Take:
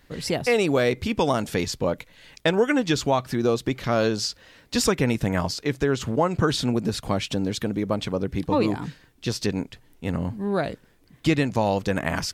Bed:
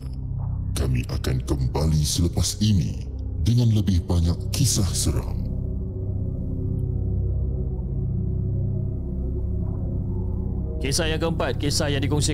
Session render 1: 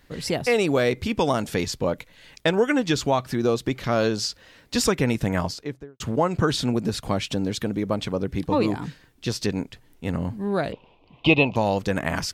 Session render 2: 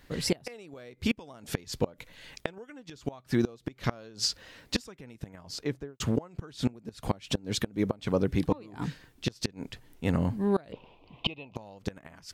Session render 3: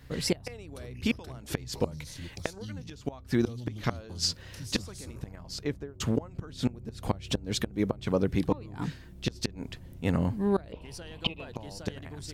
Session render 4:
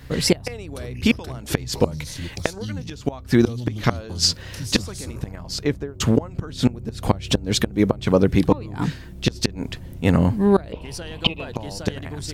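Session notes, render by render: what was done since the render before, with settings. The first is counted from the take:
5.37–6 studio fade out; 10.72–11.56 EQ curve 280 Hz 0 dB, 980 Hz +14 dB, 1700 Hz -20 dB, 2600 Hz +14 dB, 9300 Hz -29 dB
flipped gate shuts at -14 dBFS, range -26 dB
add bed -21 dB
gain +10 dB

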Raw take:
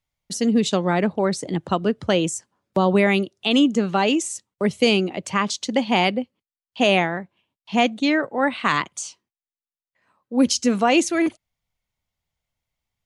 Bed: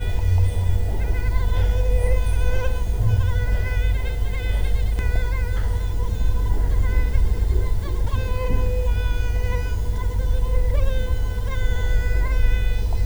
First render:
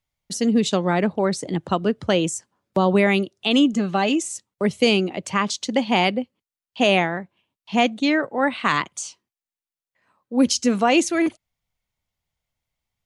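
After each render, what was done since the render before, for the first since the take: 3.73–4.34 notch comb 470 Hz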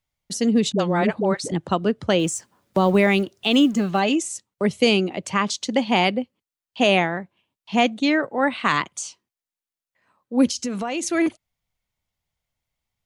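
0.72–1.52 dispersion highs, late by 66 ms, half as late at 430 Hz; 2.19–4 G.711 law mismatch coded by mu; 10.49–11.03 compressor 4:1, threshold -24 dBFS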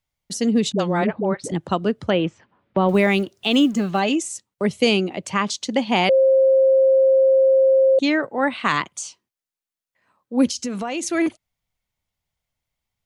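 1.04–1.44 air absorption 360 m; 2.1–2.89 LPF 3100 Hz 24 dB/oct; 6.09–7.99 bleep 532 Hz -11.5 dBFS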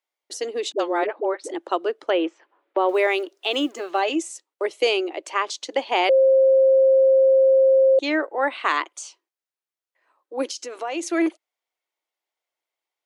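elliptic high-pass 320 Hz, stop band 40 dB; high shelf 4600 Hz -6 dB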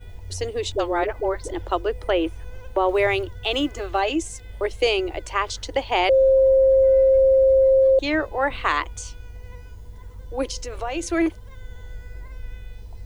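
add bed -17 dB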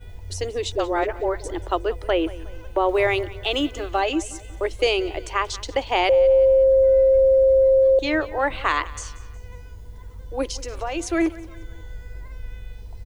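feedback echo 0.182 s, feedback 44%, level -19 dB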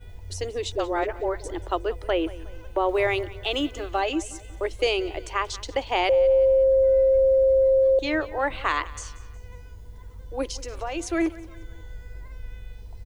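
gain -3 dB

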